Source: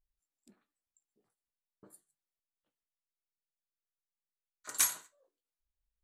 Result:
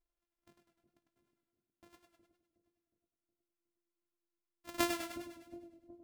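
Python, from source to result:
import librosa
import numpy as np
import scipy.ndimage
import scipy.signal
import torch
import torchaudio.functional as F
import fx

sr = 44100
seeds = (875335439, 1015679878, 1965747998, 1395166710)

y = np.r_[np.sort(x[:len(x) // 128 * 128].reshape(-1, 128), axis=1).ravel(), x[len(x) // 128 * 128:]]
y = fx.echo_split(y, sr, split_hz=560.0, low_ms=365, high_ms=103, feedback_pct=52, wet_db=-9.0)
y = fx.echo_warbled(y, sr, ms=100, feedback_pct=50, rate_hz=2.8, cents=52, wet_db=-8.0)
y = y * librosa.db_to_amplitude(-4.0)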